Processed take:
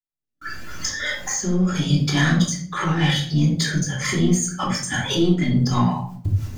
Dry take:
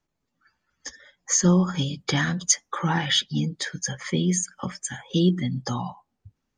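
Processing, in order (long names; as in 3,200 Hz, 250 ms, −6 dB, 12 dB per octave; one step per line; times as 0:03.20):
camcorder AGC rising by 56 dB per second
noise gate −49 dBFS, range −30 dB
high-shelf EQ 7,400 Hz +11.5 dB
downward compressor, threshold −20 dBFS, peak gain reduction 11 dB
brickwall limiter −16 dBFS, peak gain reduction 9.5 dB
leveller curve on the samples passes 1
rotating-speaker cabinet horn 0.8 Hz, later 6 Hz, at 0:02.36
convolution reverb RT60 0.55 s, pre-delay 3 ms, DRR −2.5 dB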